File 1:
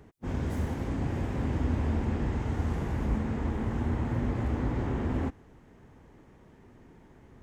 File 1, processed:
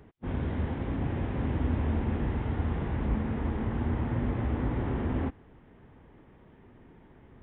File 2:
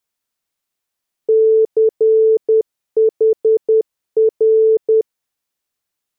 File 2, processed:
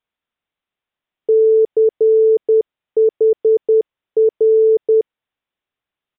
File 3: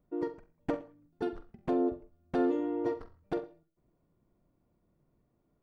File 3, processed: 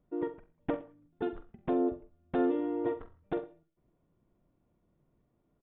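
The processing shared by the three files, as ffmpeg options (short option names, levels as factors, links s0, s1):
-af "aresample=8000,aresample=44100"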